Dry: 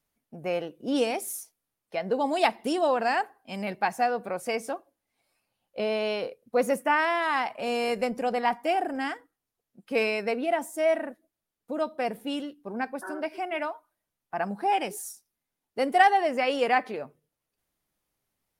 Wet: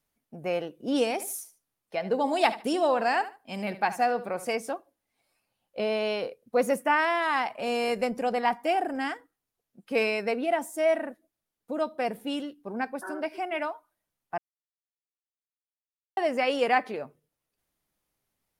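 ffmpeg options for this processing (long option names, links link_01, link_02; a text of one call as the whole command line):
ffmpeg -i in.wav -filter_complex "[0:a]asettb=1/sr,asplit=3[link_01][link_02][link_03];[link_01]atrim=end=1.124[link_04];[link_02]atrim=start=1.12:end=4.54,asetpts=PTS-STARTPTS,afade=type=in:duration=0.004:curve=qsin,afade=type=out:start_time=3.416:duration=0.004:curve=qsin,aecho=1:1:74|148:0.2|0.0439,atrim=end_sample=150822[link_05];[link_03]atrim=start=4.536[link_06];[link_04][link_05]acrossfade=duration=0.004:curve1=hsin:curve2=qsin[link_07];[link_07][link_06]acrossfade=duration=0.004:curve1=qsin:curve2=hsin,asplit=3[link_08][link_09][link_10];[link_08]atrim=end=14.38,asetpts=PTS-STARTPTS,afade=type=out:start_time=14.376:duration=0.004:curve=hsin[link_11];[link_09]atrim=start=14.38:end=16.17,asetpts=PTS-STARTPTS,volume=0[link_12];[link_10]atrim=start=16.17,asetpts=PTS-STARTPTS,afade=type=in:duration=0.004:curve=hsin[link_13];[link_11][link_12][link_13]concat=n=3:v=0:a=1" out.wav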